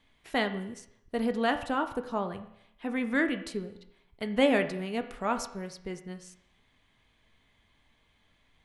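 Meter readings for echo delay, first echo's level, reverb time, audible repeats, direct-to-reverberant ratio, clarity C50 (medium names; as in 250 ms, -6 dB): no echo, no echo, 0.75 s, no echo, 7.0 dB, 11.5 dB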